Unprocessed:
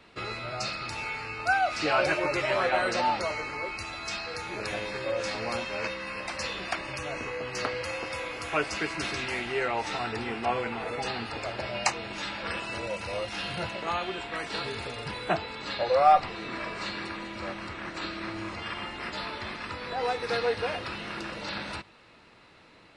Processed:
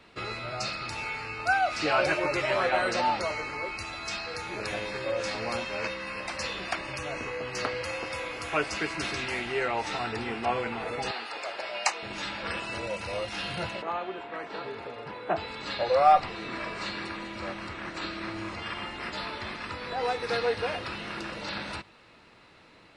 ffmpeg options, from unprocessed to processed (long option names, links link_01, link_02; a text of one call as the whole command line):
ffmpeg -i in.wav -filter_complex "[0:a]asettb=1/sr,asplit=3[link_01][link_02][link_03];[link_01]atrim=end=11.114[link_04];[link_02]atrim=start=11.11:end=12.03,asetpts=PTS-STARTPTS,afade=type=in:duration=0.004:curve=qsin,afade=type=out:start_time=0.916:duration=0.004:curve=qsin,highpass=520[link_05];[link_03]atrim=start=12.026[link_06];[link_04][link_05]acrossfade=duration=0.004:curve1=hsin:curve2=qsin[link_07];[link_07][link_06]acrossfade=duration=0.004:curve1=qsin:curve2=hsin,asplit=3[link_08][link_09][link_10];[link_08]afade=type=out:start_time=13.81:duration=0.02[link_11];[link_09]bandpass=frequency=600:width_type=q:width=0.59,afade=type=in:start_time=13.81:duration=0.02,afade=type=out:start_time=15.36:duration=0.02[link_12];[link_10]afade=type=in:start_time=15.36:duration=0.02[link_13];[link_11][link_12][link_13]amix=inputs=3:normalize=0" out.wav